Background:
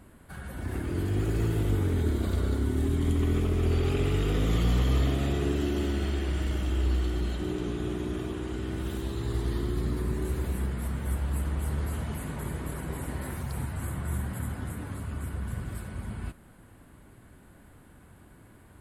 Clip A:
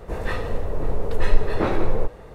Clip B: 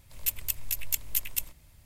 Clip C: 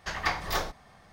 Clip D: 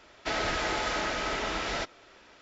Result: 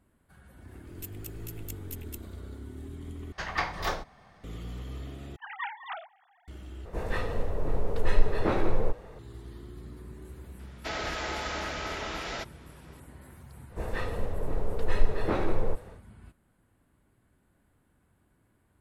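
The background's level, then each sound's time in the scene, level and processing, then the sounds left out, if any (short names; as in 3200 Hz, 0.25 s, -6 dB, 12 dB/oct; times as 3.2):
background -15 dB
0.76 add B -14.5 dB
3.32 replace with C -0.5 dB + high shelf 5700 Hz -9.5 dB
5.36 replace with C -8 dB + sine-wave speech
6.85 replace with A -4.5 dB
10.59 add D -4 dB
13.68 add A -6 dB, fades 0.10 s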